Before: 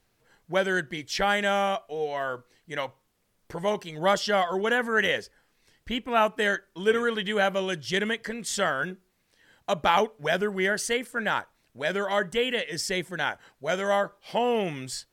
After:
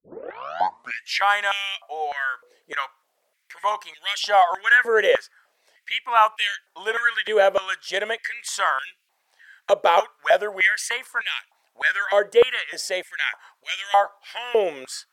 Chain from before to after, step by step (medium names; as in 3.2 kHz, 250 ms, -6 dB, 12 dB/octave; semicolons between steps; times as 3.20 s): tape start-up on the opening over 1.24 s; step-sequenced high-pass 3.3 Hz 490–2600 Hz; trim +1 dB